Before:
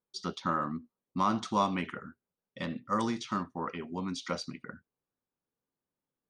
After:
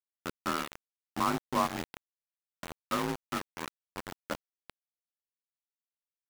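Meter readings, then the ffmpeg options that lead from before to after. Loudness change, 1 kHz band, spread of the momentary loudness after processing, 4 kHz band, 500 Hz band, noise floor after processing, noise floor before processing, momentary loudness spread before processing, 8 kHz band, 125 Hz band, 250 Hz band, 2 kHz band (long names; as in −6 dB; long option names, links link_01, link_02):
−1.5 dB, −2.0 dB, 15 LU, −0.5 dB, −1.5 dB, below −85 dBFS, below −85 dBFS, 13 LU, +2.5 dB, −5.0 dB, −4.0 dB, +1.5 dB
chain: -af "lowpass=1700,afreqshift=35,aeval=exprs='val(0)*gte(abs(val(0)),0.0376)':channel_layout=same"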